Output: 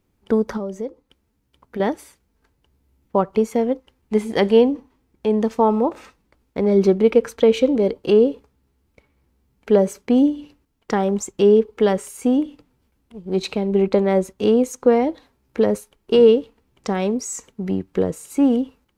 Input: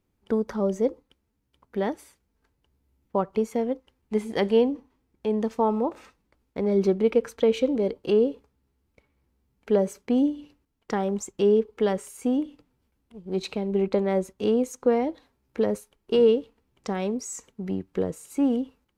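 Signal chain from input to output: 0.57–1.8 compressor 3:1, threshold -35 dBFS, peak gain reduction 13 dB; gain +6.5 dB

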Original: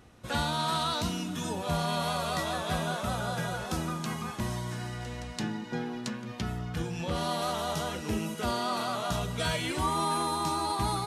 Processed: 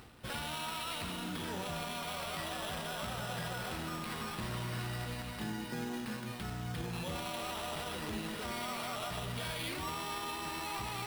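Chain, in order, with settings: high shelf 2900 Hz +9.5 dB; reverse; upward compressor, threshold -36 dBFS; reverse; limiter -27.5 dBFS, peak gain reduction 14 dB; sample-rate reducer 6700 Hz, jitter 0%; echo with dull and thin repeats by turns 0.108 s, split 2100 Hz, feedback 81%, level -11 dB; gain -3 dB

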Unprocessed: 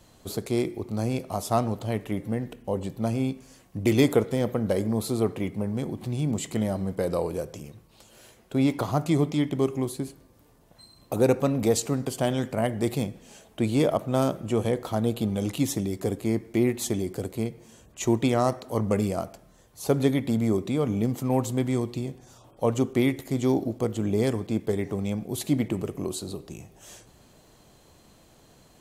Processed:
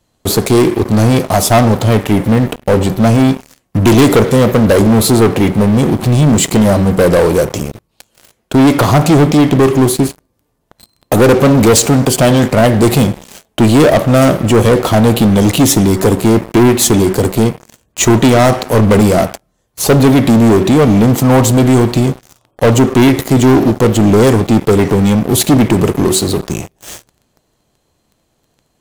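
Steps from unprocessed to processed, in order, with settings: de-hum 189.7 Hz, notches 9; sample leveller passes 5; gain +4 dB

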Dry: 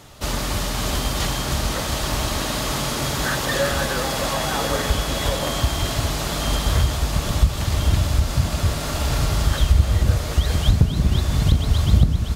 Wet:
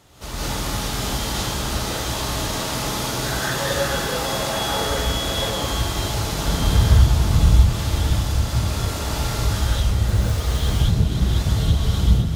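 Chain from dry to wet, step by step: 6.32–7.6 tone controls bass +8 dB, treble -1 dB; 10.08–10.63 companded quantiser 6-bit; non-linear reverb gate 0.23 s rising, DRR -7.5 dB; gain -9 dB

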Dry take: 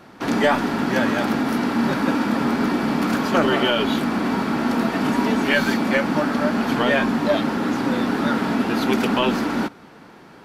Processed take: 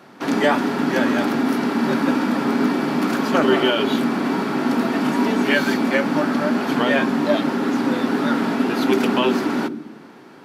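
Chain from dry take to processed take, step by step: HPF 160 Hz 12 dB/oct; on a send: resonant low shelf 530 Hz +13 dB, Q 3 + reverb RT60 0.85 s, pre-delay 7 ms, DRR 14.5 dB

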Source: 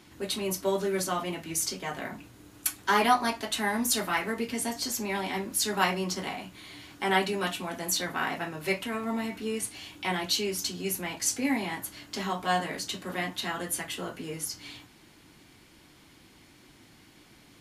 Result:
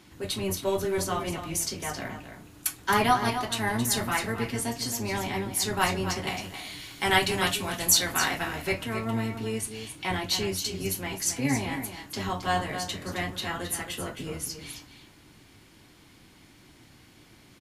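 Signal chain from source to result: octaver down 1 oct, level -2 dB; 6.27–8.62 high shelf 2200 Hz +9.5 dB; echo 0.268 s -9.5 dB

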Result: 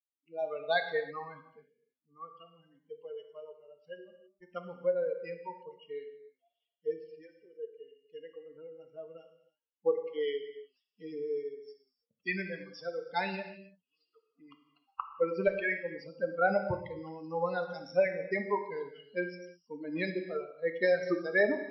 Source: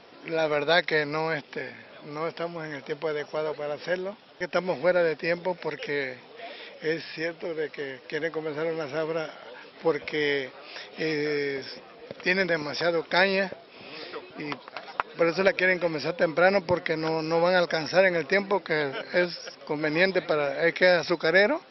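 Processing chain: per-bin expansion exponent 3; LPF 1600 Hz 6 dB/oct; non-linear reverb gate 0.35 s falling, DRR 6 dB

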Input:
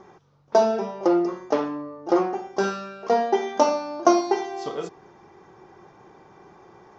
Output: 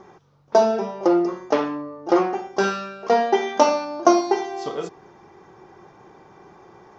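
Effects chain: 1.48–3.85 dynamic EQ 2500 Hz, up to +5 dB, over -41 dBFS, Q 0.75; gain +2 dB

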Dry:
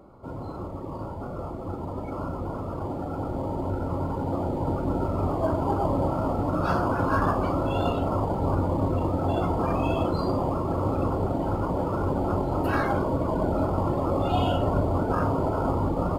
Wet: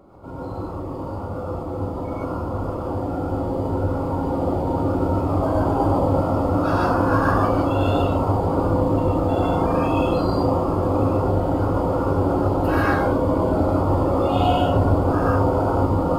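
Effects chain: non-linear reverb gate 0.17 s rising, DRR -4 dB

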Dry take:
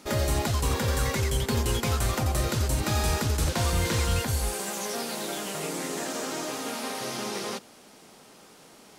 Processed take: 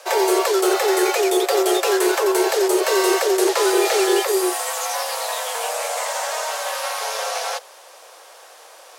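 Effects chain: frequency shift +310 Hz; gain +7.5 dB

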